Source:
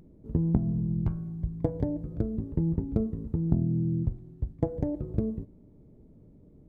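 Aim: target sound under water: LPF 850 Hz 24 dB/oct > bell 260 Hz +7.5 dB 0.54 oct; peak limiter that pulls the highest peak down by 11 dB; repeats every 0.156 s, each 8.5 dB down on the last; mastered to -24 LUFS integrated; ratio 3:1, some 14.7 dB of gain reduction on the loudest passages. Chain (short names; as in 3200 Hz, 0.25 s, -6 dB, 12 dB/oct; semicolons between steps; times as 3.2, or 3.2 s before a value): compressor 3:1, threshold -40 dBFS; limiter -34 dBFS; LPF 850 Hz 24 dB/oct; bell 260 Hz +7.5 dB 0.54 oct; feedback echo 0.156 s, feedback 38%, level -8.5 dB; gain +17 dB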